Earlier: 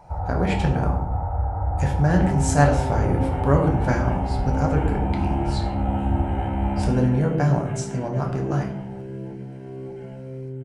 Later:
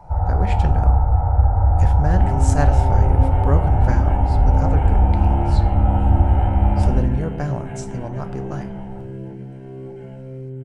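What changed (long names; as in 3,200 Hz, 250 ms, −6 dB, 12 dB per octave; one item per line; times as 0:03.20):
speech: send −10.5 dB
first sound: send +9.0 dB
master: remove high-pass filter 92 Hz 6 dB per octave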